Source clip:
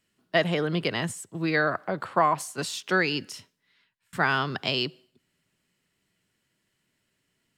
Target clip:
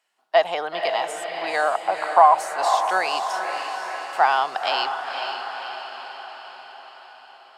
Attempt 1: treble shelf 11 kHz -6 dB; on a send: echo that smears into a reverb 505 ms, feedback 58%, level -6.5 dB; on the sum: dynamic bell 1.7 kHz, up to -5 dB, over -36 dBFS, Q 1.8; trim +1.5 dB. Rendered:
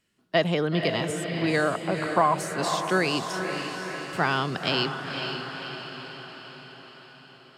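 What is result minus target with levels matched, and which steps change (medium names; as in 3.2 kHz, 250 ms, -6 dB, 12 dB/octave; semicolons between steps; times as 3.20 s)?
1 kHz band -5.0 dB
add after dynamic bell: resonant high-pass 780 Hz, resonance Q 4.8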